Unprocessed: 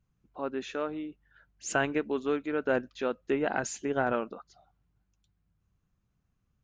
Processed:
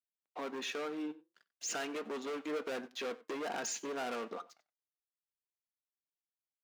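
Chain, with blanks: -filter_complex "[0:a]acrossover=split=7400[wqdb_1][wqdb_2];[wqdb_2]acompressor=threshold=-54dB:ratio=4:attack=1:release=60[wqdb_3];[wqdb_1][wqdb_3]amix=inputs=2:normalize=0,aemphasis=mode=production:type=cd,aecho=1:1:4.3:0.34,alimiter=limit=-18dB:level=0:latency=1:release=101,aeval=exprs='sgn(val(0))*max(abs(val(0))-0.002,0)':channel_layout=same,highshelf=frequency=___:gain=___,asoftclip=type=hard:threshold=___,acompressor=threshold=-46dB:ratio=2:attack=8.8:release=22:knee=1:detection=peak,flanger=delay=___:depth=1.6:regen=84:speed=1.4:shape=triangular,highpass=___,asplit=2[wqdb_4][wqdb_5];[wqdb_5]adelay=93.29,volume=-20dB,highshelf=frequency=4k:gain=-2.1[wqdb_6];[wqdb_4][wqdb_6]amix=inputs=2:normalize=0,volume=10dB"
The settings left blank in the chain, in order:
6.1k, -8.5, -35.5dB, 5.1, 320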